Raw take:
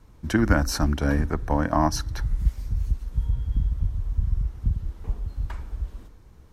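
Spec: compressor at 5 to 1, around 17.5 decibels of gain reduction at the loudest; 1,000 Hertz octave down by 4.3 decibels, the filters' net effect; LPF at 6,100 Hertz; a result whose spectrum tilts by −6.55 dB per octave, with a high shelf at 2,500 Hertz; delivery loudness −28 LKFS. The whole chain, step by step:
low-pass filter 6,100 Hz
parametric band 1,000 Hz −5 dB
high-shelf EQ 2,500 Hz −3.5 dB
downward compressor 5 to 1, threshold −36 dBFS
level +13.5 dB

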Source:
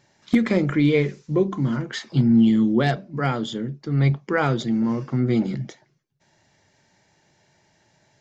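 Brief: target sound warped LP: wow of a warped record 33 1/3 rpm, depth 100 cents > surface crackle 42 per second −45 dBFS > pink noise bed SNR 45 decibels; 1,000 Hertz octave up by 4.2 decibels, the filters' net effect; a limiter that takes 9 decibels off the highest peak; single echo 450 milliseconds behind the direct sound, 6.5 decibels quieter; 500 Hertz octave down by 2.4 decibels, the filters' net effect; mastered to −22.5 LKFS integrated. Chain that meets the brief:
parametric band 500 Hz −5 dB
parametric band 1,000 Hz +8 dB
brickwall limiter −16 dBFS
single-tap delay 450 ms −6.5 dB
wow of a warped record 33 1/3 rpm, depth 100 cents
surface crackle 42 per second −45 dBFS
pink noise bed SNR 45 dB
level +2.5 dB

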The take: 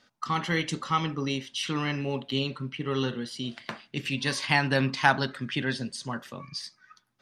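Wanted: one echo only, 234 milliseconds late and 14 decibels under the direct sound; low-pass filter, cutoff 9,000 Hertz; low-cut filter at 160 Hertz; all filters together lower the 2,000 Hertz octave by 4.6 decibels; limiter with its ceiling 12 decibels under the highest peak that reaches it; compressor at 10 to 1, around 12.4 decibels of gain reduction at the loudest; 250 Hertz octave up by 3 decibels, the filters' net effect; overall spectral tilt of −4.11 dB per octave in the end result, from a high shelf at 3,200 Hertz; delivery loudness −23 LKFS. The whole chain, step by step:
high-pass filter 160 Hz
low-pass filter 9,000 Hz
parametric band 250 Hz +4.5 dB
parametric band 2,000 Hz −8.5 dB
high-shelf EQ 3,200 Hz +6.5 dB
downward compressor 10 to 1, threshold −29 dBFS
brickwall limiter −26.5 dBFS
single-tap delay 234 ms −14 dB
level +13 dB

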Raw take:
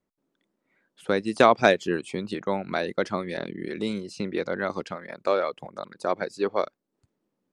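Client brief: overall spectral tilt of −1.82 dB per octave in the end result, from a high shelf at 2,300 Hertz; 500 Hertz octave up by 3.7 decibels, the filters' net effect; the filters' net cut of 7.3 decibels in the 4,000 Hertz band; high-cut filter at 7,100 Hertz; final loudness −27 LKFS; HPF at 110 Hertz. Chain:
high-pass filter 110 Hz
low-pass filter 7,100 Hz
parametric band 500 Hz +5 dB
high-shelf EQ 2,300 Hz −5.5 dB
parametric band 4,000 Hz −3.5 dB
level −2.5 dB

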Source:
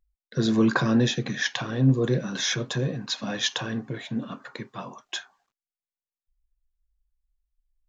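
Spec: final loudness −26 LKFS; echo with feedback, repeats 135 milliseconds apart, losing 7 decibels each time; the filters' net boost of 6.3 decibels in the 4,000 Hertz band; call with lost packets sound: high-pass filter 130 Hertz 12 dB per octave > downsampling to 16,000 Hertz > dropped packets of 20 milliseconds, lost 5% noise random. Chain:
high-pass filter 130 Hz 12 dB per octave
parametric band 4,000 Hz +7.5 dB
repeating echo 135 ms, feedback 45%, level −7 dB
downsampling to 16,000 Hz
dropped packets of 20 ms, lost 5% noise random
level −2.5 dB

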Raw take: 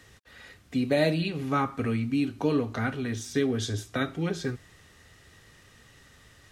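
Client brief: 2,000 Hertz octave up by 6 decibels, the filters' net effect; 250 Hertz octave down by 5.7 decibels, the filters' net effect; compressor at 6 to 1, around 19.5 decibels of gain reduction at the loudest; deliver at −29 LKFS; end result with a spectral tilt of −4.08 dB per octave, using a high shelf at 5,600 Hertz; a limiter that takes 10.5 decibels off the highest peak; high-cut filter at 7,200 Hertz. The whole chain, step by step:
low-pass filter 7,200 Hz
parametric band 250 Hz −7 dB
parametric band 2,000 Hz +7 dB
high-shelf EQ 5,600 Hz +6 dB
downward compressor 6 to 1, threshold −42 dBFS
level +18.5 dB
brickwall limiter −18 dBFS

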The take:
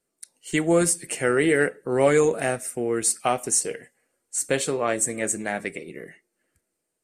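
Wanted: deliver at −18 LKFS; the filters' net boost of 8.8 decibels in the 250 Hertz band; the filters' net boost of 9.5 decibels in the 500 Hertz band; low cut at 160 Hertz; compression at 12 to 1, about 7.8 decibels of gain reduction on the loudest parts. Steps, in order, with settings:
high-pass filter 160 Hz
parametric band 250 Hz +9 dB
parametric band 500 Hz +8.5 dB
downward compressor 12 to 1, threshold −13 dBFS
level +2.5 dB

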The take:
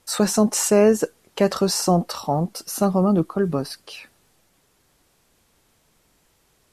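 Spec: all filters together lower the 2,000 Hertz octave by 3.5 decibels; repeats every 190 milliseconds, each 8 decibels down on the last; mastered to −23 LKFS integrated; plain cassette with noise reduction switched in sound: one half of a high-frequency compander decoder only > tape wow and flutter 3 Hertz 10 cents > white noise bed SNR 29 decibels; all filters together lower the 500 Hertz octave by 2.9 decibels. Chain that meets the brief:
parametric band 500 Hz −3.5 dB
parametric band 2,000 Hz −4.5 dB
repeating echo 190 ms, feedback 40%, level −8 dB
one half of a high-frequency compander decoder only
tape wow and flutter 3 Hz 10 cents
white noise bed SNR 29 dB
level −2 dB

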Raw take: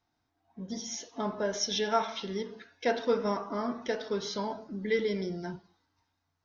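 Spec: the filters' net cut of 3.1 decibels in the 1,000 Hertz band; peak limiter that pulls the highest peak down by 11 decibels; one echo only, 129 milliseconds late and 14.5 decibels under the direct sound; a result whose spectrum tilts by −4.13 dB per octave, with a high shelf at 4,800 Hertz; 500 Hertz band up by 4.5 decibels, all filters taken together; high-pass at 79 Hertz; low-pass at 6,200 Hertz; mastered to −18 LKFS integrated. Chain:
high-pass filter 79 Hz
low-pass filter 6,200 Hz
parametric band 500 Hz +7 dB
parametric band 1,000 Hz −8 dB
high-shelf EQ 4,800 Hz +3.5 dB
brickwall limiter −23 dBFS
single-tap delay 129 ms −14.5 dB
level +15.5 dB

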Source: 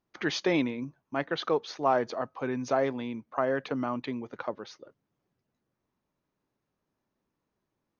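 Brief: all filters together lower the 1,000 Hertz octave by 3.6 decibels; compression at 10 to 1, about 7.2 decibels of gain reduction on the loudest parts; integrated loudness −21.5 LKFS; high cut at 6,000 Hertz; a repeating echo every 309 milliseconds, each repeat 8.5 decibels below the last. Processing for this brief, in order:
low-pass filter 6,000 Hz
parametric band 1,000 Hz −5 dB
downward compressor 10 to 1, threshold −29 dBFS
repeating echo 309 ms, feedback 38%, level −8.5 dB
level +14 dB

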